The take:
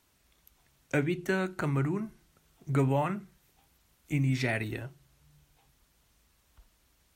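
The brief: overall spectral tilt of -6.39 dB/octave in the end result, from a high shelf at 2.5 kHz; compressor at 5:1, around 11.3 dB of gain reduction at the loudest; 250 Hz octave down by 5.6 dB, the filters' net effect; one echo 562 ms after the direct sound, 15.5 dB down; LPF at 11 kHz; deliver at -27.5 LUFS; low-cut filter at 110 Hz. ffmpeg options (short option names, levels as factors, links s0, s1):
-af "highpass=110,lowpass=11000,equalizer=f=250:t=o:g=-7.5,highshelf=f=2500:g=-9,acompressor=threshold=0.0126:ratio=5,aecho=1:1:562:0.168,volume=6.31"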